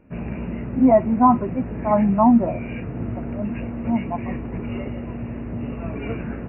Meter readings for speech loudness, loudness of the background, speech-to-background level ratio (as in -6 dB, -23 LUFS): -19.0 LUFS, -30.0 LUFS, 11.0 dB